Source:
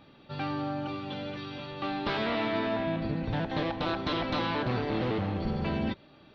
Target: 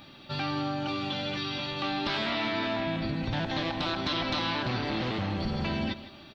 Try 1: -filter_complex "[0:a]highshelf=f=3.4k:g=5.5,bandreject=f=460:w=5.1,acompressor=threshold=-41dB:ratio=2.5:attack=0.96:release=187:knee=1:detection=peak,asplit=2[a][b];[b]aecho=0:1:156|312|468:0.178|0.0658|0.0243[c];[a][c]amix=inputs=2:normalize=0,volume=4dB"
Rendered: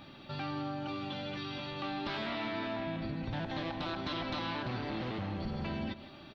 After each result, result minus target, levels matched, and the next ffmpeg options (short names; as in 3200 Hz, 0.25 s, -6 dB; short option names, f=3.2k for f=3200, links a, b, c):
compressor: peak gain reduction +5.5 dB; 8000 Hz band -5.0 dB
-filter_complex "[0:a]highshelf=f=3.4k:g=5.5,bandreject=f=460:w=5.1,acompressor=threshold=-30.5dB:ratio=2.5:attack=0.96:release=187:knee=1:detection=peak,asplit=2[a][b];[b]aecho=0:1:156|312|468:0.178|0.0658|0.0243[c];[a][c]amix=inputs=2:normalize=0,volume=4dB"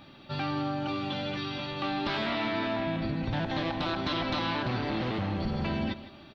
8000 Hz band -5.0 dB
-filter_complex "[0:a]highshelf=f=3.4k:g=14,bandreject=f=460:w=5.1,acompressor=threshold=-30.5dB:ratio=2.5:attack=0.96:release=187:knee=1:detection=peak,asplit=2[a][b];[b]aecho=0:1:156|312|468:0.178|0.0658|0.0243[c];[a][c]amix=inputs=2:normalize=0,volume=4dB"